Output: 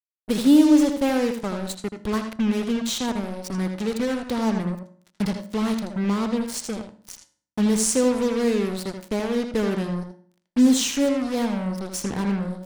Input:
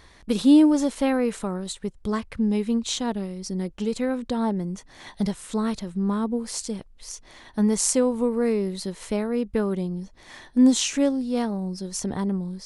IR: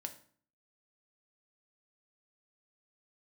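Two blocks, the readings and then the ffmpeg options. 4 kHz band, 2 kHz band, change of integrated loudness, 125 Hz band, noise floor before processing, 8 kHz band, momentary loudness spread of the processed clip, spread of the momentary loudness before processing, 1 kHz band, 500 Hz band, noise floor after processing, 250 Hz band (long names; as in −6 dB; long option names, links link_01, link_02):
+2.0 dB, +4.0 dB, +1.0 dB, +1.5 dB, −51 dBFS, +0.5 dB, 13 LU, 14 LU, +2.0 dB, +1.0 dB, −74 dBFS, +1.0 dB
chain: -filter_complex "[0:a]acrusher=bits=4:mix=0:aa=0.5,asplit=2[link_01][link_02];[1:a]atrim=start_sample=2205,lowpass=7600,adelay=80[link_03];[link_02][link_03]afir=irnorm=-1:irlink=0,volume=-3.5dB[link_04];[link_01][link_04]amix=inputs=2:normalize=0"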